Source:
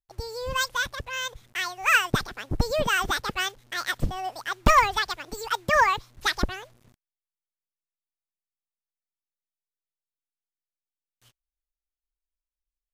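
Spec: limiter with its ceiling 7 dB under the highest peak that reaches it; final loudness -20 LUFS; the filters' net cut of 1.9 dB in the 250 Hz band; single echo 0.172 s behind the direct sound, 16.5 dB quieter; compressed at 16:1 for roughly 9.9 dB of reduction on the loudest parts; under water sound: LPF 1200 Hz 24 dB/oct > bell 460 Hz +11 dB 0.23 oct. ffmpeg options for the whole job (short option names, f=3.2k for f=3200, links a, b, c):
-af "equalizer=f=250:t=o:g=-3,acompressor=threshold=-23dB:ratio=16,alimiter=limit=-19.5dB:level=0:latency=1,lowpass=f=1.2k:w=0.5412,lowpass=f=1.2k:w=1.3066,equalizer=f=460:t=o:w=0.23:g=11,aecho=1:1:172:0.15,volume=14.5dB"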